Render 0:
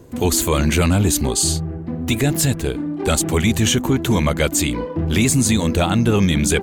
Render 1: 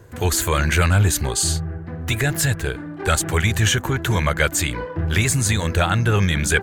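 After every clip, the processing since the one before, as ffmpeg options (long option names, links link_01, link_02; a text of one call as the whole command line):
ffmpeg -i in.wav -af "equalizer=frequency=100:width_type=o:width=0.67:gain=6,equalizer=frequency=250:width_type=o:width=0.67:gain=-11,equalizer=frequency=1600:width_type=o:width=0.67:gain=11,volume=-2.5dB" out.wav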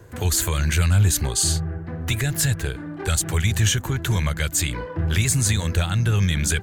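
ffmpeg -i in.wav -filter_complex "[0:a]acrossover=split=190|3000[link_01][link_02][link_03];[link_02]acompressor=threshold=-29dB:ratio=6[link_04];[link_01][link_04][link_03]amix=inputs=3:normalize=0" out.wav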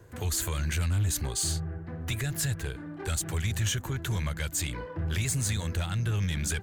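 ffmpeg -i in.wav -af "asoftclip=type=tanh:threshold=-14.5dB,volume=-7dB" out.wav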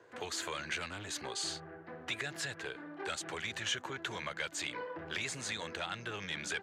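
ffmpeg -i in.wav -af "highpass=420,lowpass=4300" out.wav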